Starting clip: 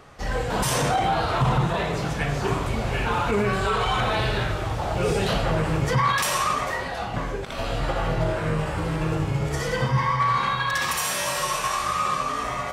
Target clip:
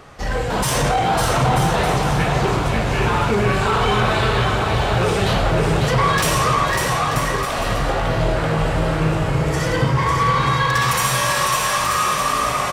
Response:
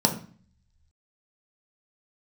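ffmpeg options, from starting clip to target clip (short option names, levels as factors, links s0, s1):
-af "asoftclip=type=tanh:threshold=0.126,aecho=1:1:550|935|1204|1393|1525:0.631|0.398|0.251|0.158|0.1,volume=1.88"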